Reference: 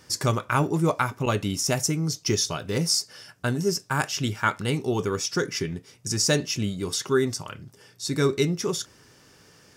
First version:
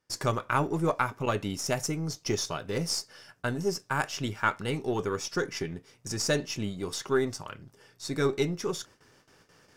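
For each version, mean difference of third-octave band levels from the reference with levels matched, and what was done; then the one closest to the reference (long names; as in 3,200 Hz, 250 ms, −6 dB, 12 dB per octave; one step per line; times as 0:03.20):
2.5 dB: gain on one half-wave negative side −3 dB
high-shelf EQ 2,400 Hz −8.5 dB
noise gate with hold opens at −47 dBFS
low-shelf EQ 370 Hz −7 dB
level +1 dB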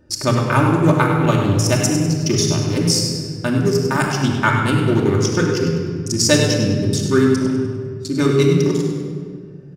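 9.0 dB: adaptive Wiener filter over 41 samples
in parallel at 0 dB: speech leveller 2 s
on the sum: repeating echo 100 ms, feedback 42%, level −9.5 dB
rectangular room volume 3,200 cubic metres, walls mixed, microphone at 2.6 metres
level −1 dB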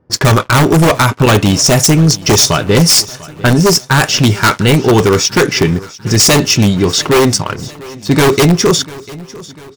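6.0 dB: low-pass that shuts in the quiet parts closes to 640 Hz, open at −20.5 dBFS
leveller curve on the samples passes 3
in parallel at −6 dB: wrap-around overflow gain 11 dB
on the sum: repeating echo 696 ms, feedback 51%, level −20 dB
level +4.5 dB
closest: first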